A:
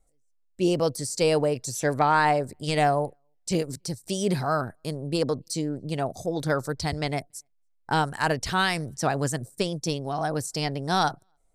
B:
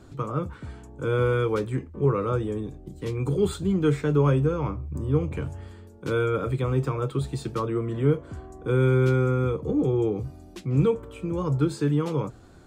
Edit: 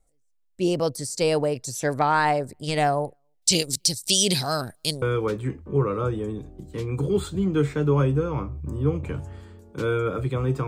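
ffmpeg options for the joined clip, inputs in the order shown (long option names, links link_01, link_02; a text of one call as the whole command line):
ffmpeg -i cue0.wav -i cue1.wav -filter_complex "[0:a]asettb=1/sr,asplit=3[link_01][link_02][link_03];[link_01]atrim=end=3.424[link_04];[link_02]atrim=start=3.42:end=5.02,asetpts=PTS-STARTPTS,afade=type=in:duration=0.004:curve=qsin,afade=type=out:start_time=1.596:duration=0.004:curve=qsin,highshelf=frequency=2200:width_type=q:width=1.5:gain=13.5[link_05];[link_03]atrim=start=5.016[link_06];[link_04][link_05]acrossfade=duration=0.004:curve1=hsin:curve2=qsin[link_07];[link_07][link_06]acrossfade=duration=0.004:curve1=qsin:curve2=hsin,apad=whole_dur=10.67,atrim=end=10.67,atrim=end=5.022[link_08];[1:a]atrim=start=1.298:end=6.95[link_09];[link_08][link_09]acrossfade=duration=0.004:curve1=hsin:curve2=hsin" out.wav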